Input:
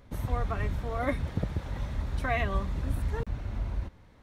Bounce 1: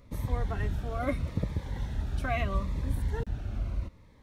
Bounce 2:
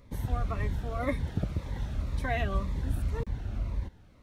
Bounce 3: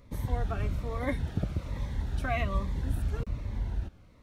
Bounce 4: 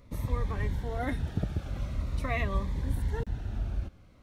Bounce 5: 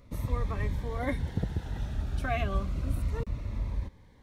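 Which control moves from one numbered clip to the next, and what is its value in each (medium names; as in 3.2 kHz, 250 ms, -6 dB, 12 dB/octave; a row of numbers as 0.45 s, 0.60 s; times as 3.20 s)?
Shepard-style phaser, rate: 0.77 Hz, 1.9 Hz, 1.2 Hz, 0.45 Hz, 0.31 Hz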